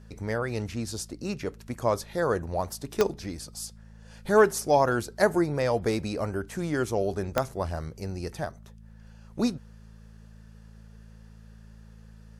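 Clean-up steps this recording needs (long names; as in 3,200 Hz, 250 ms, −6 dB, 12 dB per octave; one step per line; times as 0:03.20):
click removal
hum removal 54.6 Hz, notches 4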